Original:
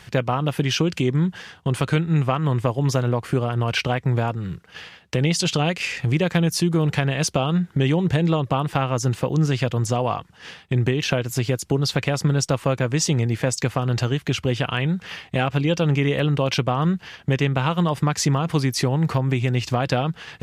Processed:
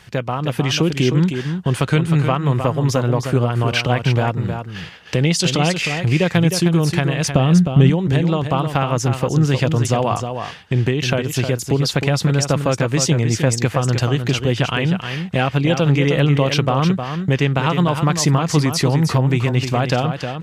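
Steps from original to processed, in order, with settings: 7.30–7.90 s: bass shelf 350 Hz +10 dB; level rider gain up to 6 dB; delay 310 ms -7.5 dB; trim -1 dB

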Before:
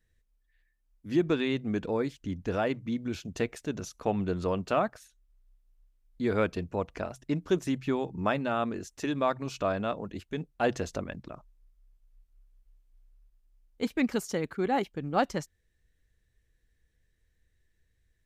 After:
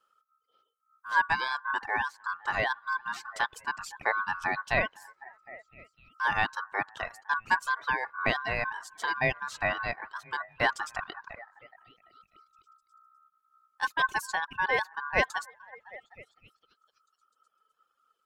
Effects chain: repeats whose band climbs or falls 253 ms, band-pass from 230 Hz, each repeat 0.7 oct, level -11.5 dB; ring modulator 1.3 kHz; reverb removal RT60 1.3 s; trim +3.5 dB

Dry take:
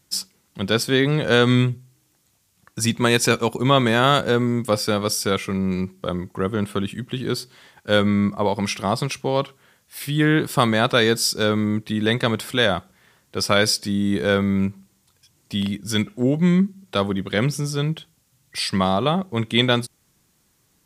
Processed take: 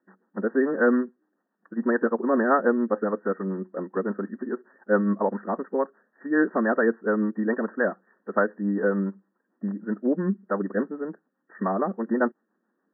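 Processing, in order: time stretch by phase-locked vocoder 0.62×; rotary cabinet horn 7 Hz; brick-wall FIR band-pass 190–1900 Hz

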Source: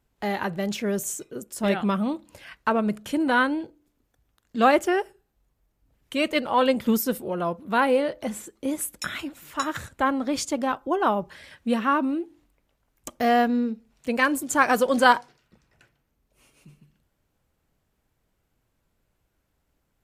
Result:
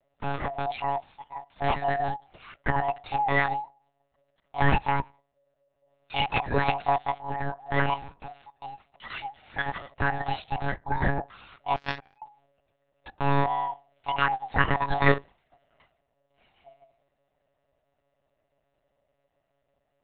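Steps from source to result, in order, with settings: split-band scrambler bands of 500 Hz; 7.94–9.11 s: compression 16:1, threshold -34 dBFS, peak gain reduction 14.5 dB; monotone LPC vocoder at 8 kHz 140 Hz; 11.76–12.22 s: power-law waveshaper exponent 3; trim -2.5 dB

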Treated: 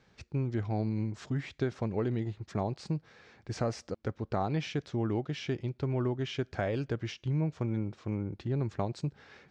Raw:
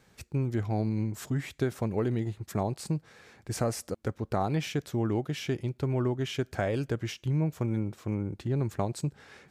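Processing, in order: low-pass 5.7 kHz 24 dB/octave; trim -2.5 dB

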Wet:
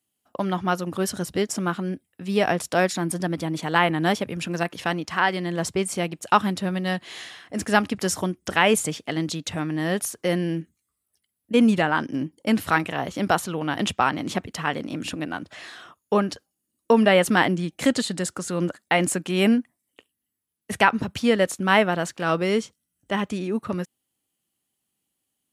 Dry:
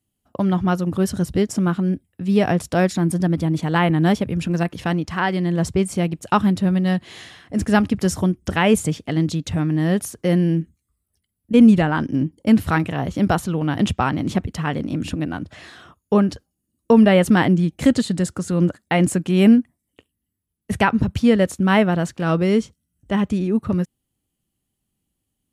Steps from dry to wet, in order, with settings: high-pass 620 Hz 6 dB/octave; trim +2 dB

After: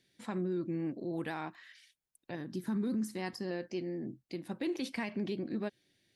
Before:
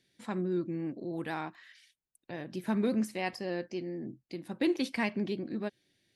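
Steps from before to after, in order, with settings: 2.35–3.51 s: fifteen-band graphic EQ 250 Hz +4 dB, 630 Hz -11 dB, 2.5 kHz -11 dB; peak limiter -27.5 dBFS, peak gain reduction 8.5 dB

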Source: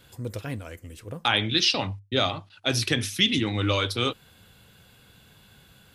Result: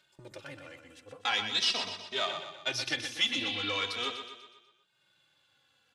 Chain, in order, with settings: partial rectifier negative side -7 dB; gate -45 dBFS, range -32 dB; low-pass 6.5 kHz 12 dB/octave; spectral replace 3.37–3.72 s, 2.3–5.1 kHz; high-pass 790 Hz 6 dB/octave; upward compressor, threshold -46 dBFS; feedback delay 123 ms, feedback 50%, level -8 dB; endless flanger 2.8 ms -0.42 Hz

